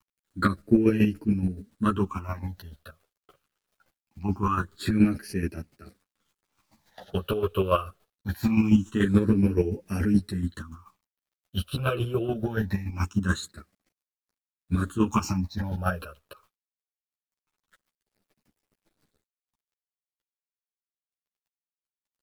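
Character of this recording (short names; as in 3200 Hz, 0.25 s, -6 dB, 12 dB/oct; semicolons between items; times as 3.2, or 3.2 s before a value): phasing stages 8, 0.23 Hz, lowest notch 250–1100 Hz; a quantiser's noise floor 12-bit, dither none; chopped level 7 Hz, depth 60%, duty 25%; a shimmering, thickened sound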